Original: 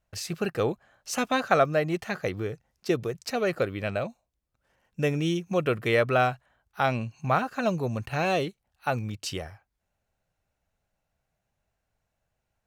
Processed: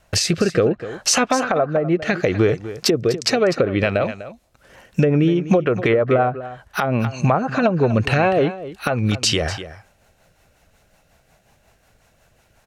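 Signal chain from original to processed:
treble cut that deepens with the level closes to 910 Hz, closed at −20 dBFS
low-shelf EQ 230 Hz −6 dB
downward compressor 16 to 1, threshold −37 dBFS, peak gain reduction 19.5 dB
rotating-speaker cabinet horn 0.65 Hz, later 5.5 Hz, at 0:02.71
on a send: single-tap delay 248 ms −14.5 dB
on the sum: boost into a limiter +31.5 dB
level −5 dB

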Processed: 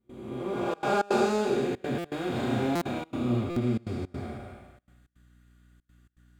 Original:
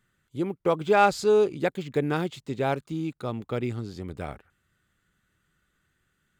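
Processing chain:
spectrum smeared in time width 551 ms
0:02.31–0:03.39: flutter between parallel walls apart 5.7 metres, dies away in 0.55 s
convolution reverb RT60 0.30 s, pre-delay 4 ms, DRR −8.5 dB
mains hum 60 Hz, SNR 29 dB
gate pattern ".xxxxxxx.xx" 163 BPM −24 dB
buffer that repeats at 0:01.98/0:02.75/0:03.50, samples 256, times 10
level −5 dB

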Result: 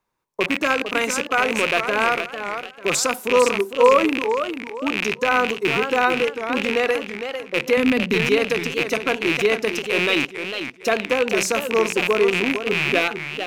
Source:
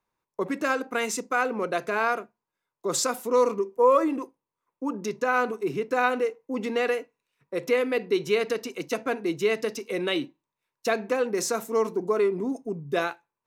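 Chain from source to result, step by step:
loose part that buzzes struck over −42 dBFS, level −14 dBFS
0:07.77–0:08.27: low shelf with overshoot 290 Hz +7 dB, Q 3
feedback echo with a swinging delay time 451 ms, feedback 30%, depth 180 cents, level −8.5 dB
level +4.5 dB

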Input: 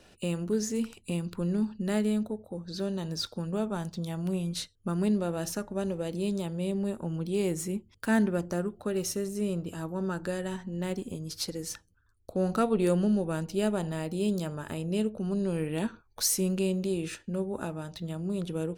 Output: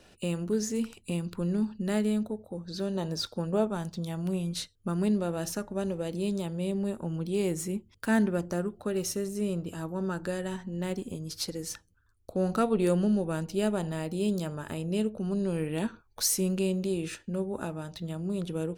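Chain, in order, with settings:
0:02.94–0:03.67: dynamic equaliser 620 Hz, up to +7 dB, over −43 dBFS, Q 0.72

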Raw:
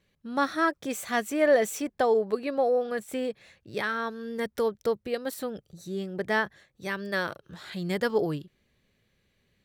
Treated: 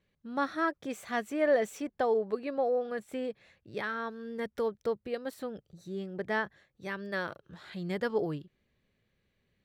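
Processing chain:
high-shelf EQ 5,300 Hz −11 dB
level −4.5 dB

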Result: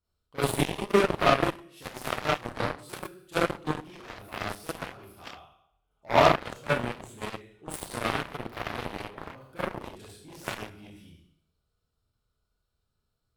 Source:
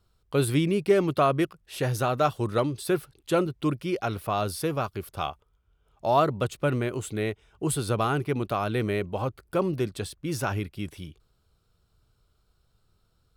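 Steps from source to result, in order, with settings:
four-comb reverb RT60 0.69 s, combs from 26 ms, DRR −9 dB
harmonic generator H 5 −30 dB, 7 −14 dB, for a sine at 0.5 dBFS
level −7 dB

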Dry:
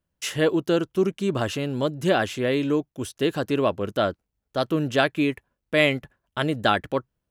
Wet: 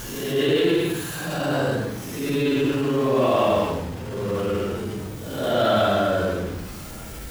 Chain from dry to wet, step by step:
converter with a step at zero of −28.5 dBFS
extreme stretch with random phases 6.8×, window 0.10 s, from 0:03.17
transient designer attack −6 dB, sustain +2 dB

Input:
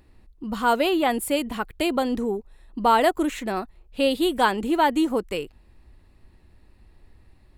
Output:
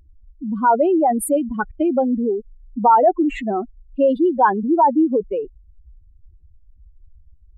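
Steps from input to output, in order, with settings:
expanding power law on the bin magnitudes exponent 2.8
level +6 dB

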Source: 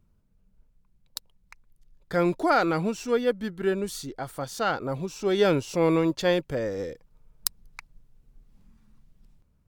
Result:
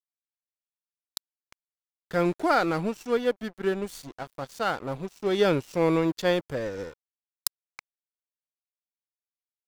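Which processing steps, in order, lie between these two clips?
dead-zone distortion −39 dBFS

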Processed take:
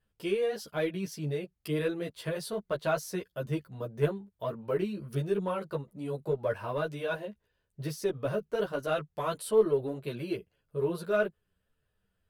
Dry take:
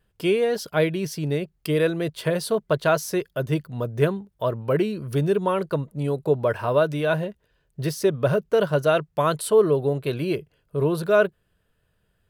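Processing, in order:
in parallel at −10 dB: asymmetric clip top −18 dBFS
on the sum: string-ensemble chorus
level −8.5 dB

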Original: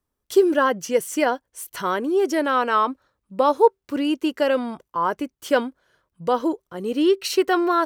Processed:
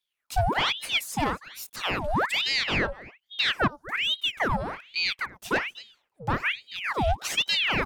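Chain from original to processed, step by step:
on a send: single-tap delay 242 ms −22 dB
on the sum: gain on a spectral selection 0:03.70–0:04.60, 1,100–4,400 Hz −11 dB
soft clipping −14.5 dBFS, distortion −13 dB
ring modulator whose carrier an LFO sweeps 1,900 Hz, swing 85%, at 1.2 Hz
level −1 dB

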